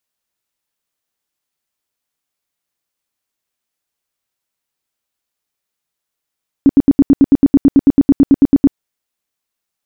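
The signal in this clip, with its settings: tone bursts 278 Hz, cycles 9, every 0.11 s, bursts 19, -3 dBFS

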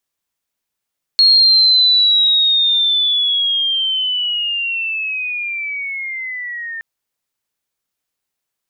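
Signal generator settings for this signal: chirp linear 4300 Hz -> 1800 Hz -6.5 dBFS -> -24 dBFS 5.62 s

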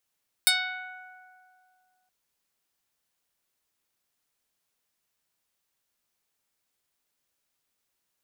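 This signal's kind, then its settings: plucked string F#5, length 1.62 s, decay 2.52 s, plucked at 0.12, medium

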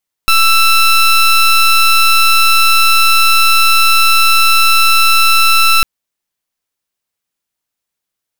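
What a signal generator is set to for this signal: pulse 1330 Hz, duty 18% -8 dBFS 5.55 s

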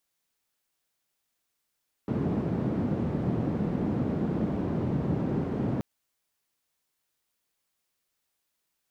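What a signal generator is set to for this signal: noise band 130–210 Hz, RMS -28.5 dBFS 3.73 s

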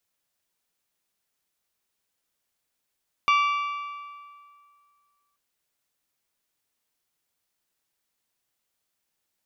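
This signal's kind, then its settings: metal hit bell, length 2.08 s, lowest mode 1160 Hz, modes 6, decay 2.14 s, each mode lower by 5.5 dB, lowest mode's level -17 dB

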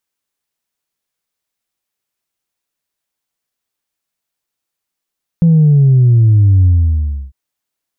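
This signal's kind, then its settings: sub drop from 170 Hz, over 1.90 s, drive 0 dB, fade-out 0.67 s, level -5.5 dB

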